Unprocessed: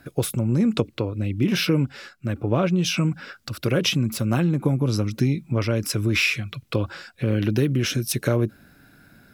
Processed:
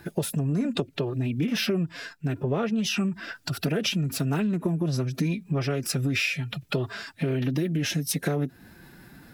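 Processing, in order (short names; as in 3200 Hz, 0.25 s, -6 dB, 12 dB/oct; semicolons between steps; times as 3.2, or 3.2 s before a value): formant-preserving pitch shift +3.5 st; compressor 3:1, threshold -29 dBFS, peak gain reduction 10 dB; gain +3.5 dB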